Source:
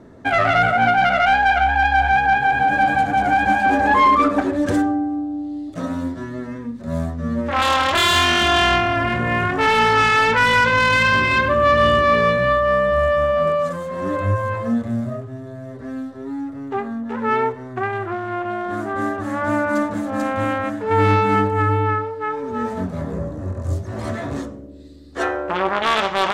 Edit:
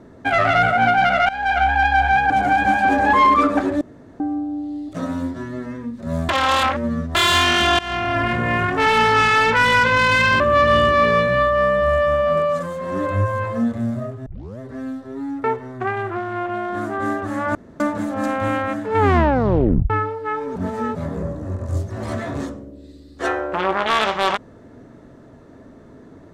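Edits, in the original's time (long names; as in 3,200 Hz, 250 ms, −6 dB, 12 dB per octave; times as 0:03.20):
0:01.29–0:01.61: fade in, from −19.5 dB
0:02.30–0:03.11: remove
0:04.62–0:05.01: fill with room tone
0:07.10–0:07.96: reverse
0:08.60–0:08.98: fade in, from −21 dB
0:11.21–0:11.50: remove
0:15.36: tape start 0.33 s
0:16.54–0:17.40: remove
0:19.51–0:19.76: fill with room tone
0:20.94: tape stop 0.92 s
0:22.52–0:22.91: reverse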